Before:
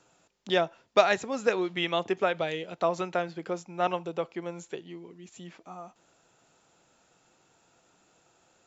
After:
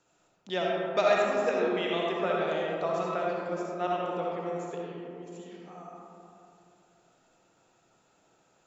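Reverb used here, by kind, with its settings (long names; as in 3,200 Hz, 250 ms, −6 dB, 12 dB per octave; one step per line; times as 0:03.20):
comb and all-pass reverb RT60 2.9 s, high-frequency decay 0.3×, pre-delay 25 ms, DRR −4 dB
level −7 dB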